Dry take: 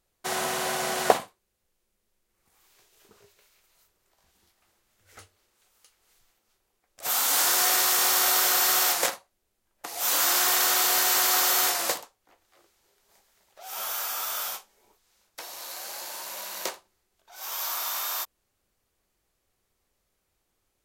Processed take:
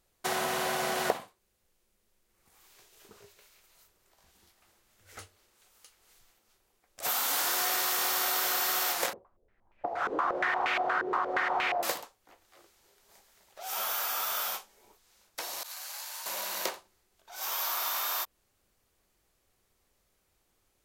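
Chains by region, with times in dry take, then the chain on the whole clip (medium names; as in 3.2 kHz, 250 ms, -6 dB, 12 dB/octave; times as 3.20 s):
9.13–11.83 s: bass shelf 140 Hz +7 dB + step-sequenced low-pass 8.5 Hz 410–2400 Hz
15.63–16.26 s: high-pass 960 Hz + doubling 12 ms -11.5 dB + expander -34 dBFS
whole clip: dynamic bell 7.9 kHz, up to -5 dB, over -40 dBFS, Q 0.77; compression 3:1, threshold -31 dBFS; trim +2.5 dB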